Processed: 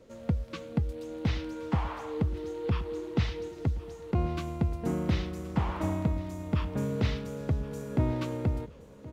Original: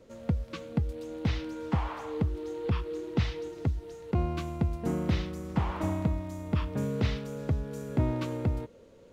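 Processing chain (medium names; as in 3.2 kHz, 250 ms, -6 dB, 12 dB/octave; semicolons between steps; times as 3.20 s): feedback delay 1073 ms, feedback 50%, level -19 dB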